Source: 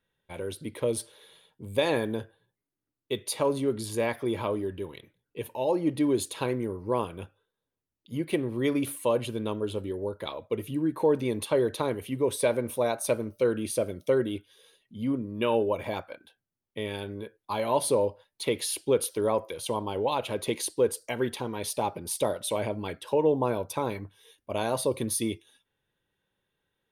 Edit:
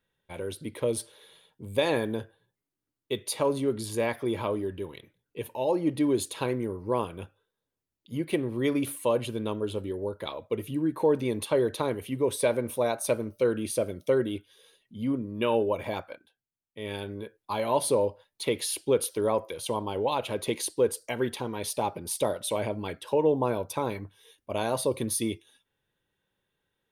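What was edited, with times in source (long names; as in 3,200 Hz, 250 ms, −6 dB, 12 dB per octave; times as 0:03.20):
0:16.12–0:16.91: duck −9 dB, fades 0.15 s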